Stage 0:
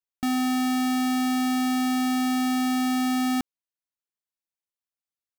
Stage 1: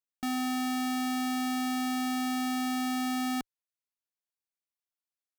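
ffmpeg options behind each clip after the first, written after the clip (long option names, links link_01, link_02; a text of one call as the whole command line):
ffmpeg -i in.wav -af "equalizer=frequency=68:width=0.46:gain=-9.5,volume=-4.5dB" out.wav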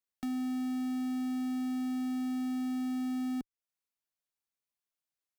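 ffmpeg -i in.wav -filter_complex "[0:a]acrossover=split=380[link_01][link_02];[link_02]acompressor=threshold=-48dB:ratio=5[link_03];[link_01][link_03]amix=inputs=2:normalize=0" out.wav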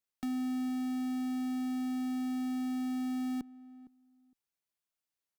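ffmpeg -i in.wav -filter_complex "[0:a]asplit=2[link_01][link_02];[link_02]adelay=460,lowpass=frequency=910:poles=1,volume=-17.5dB,asplit=2[link_03][link_04];[link_04]adelay=460,lowpass=frequency=910:poles=1,volume=0.17[link_05];[link_01][link_03][link_05]amix=inputs=3:normalize=0" out.wav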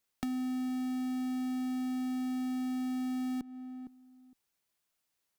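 ffmpeg -i in.wav -af "acompressor=threshold=-42dB:ratio=6,volume=8.5dB" out.wav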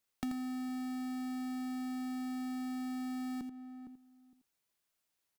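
ffmpeg -i in.wav -af "aecho=1:1:84:0.335,volume=-2dB" out.wav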